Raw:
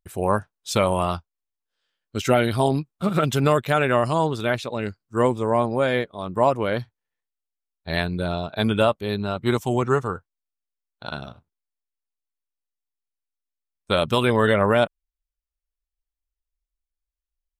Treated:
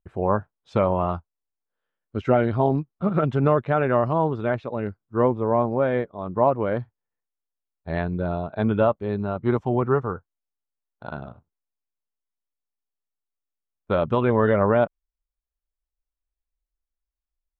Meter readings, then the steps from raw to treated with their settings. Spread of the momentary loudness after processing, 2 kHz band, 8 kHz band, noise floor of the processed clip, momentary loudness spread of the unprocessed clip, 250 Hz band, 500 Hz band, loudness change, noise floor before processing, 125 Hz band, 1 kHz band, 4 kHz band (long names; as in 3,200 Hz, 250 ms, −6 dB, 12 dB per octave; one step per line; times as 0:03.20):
11 LU, −6.0 dB, below −30 dB, below −85 dBFS, 10 LU, 0.0 dB, 0.0 dB, −1.0 dB, below −85 dBFS, 0.0 dB, −1.5 dB, below −15 dB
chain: low-pass filter 1,300 Hz 12 dB per octave